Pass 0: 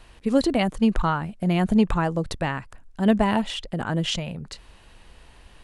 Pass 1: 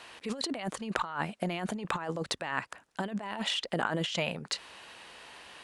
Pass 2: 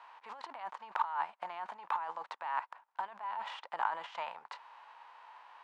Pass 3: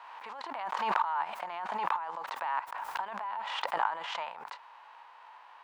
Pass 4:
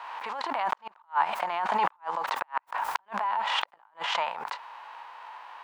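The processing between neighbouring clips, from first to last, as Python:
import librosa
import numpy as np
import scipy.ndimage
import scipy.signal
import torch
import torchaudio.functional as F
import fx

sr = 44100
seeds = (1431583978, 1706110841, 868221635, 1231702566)

y1 = fx.weighting(x, sr, curve='A')
y1 = fx.over_compress(y1, sr, threshold_db=-34.0, ratio=-1.0)
y2 = fx.envelope_flatten(y1, sr, power=0.6)
y2 = fx.ladder_bandpass(y2, sr, hz=1000.0, resonance_pct=70)
y2 = y2 * 10.0 ** (5.5 / 20.0)
y3 = fx.pre_swell(y2, sr, db_per_s=27.0)
y3 = y3 * 10.0 ** (1.5 / 20.0)
y4 = fx.gate_flip(y3, sr, shuts_db=-21.0, range_db=-39)
y4 = y4 * 10.0 ** (8.5 / 20.0)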